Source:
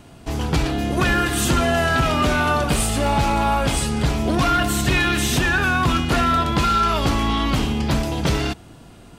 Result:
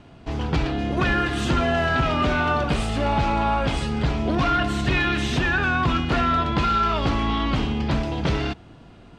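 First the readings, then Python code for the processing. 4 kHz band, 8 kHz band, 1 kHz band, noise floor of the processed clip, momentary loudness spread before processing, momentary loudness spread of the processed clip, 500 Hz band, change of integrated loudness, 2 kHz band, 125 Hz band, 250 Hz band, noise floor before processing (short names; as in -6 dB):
-4.5 dB, -15.0 dB, -2.5 dB, -47 dBFS, 4 LU, 4 LU, -2.5 dB, -3.0 dB, -2.5 dB, -2.5 dB, -2.5 dB, -44 dBFS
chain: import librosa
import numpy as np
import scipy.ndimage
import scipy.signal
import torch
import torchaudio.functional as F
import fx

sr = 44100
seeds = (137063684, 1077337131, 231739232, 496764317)

y = scipy.signal.sosfilt(scipy.signal.butter(2, 3900.0, 'lowpass', fs=sr, output='sos'), x)
y = y * librosa.db_to_amplitude(-2.5)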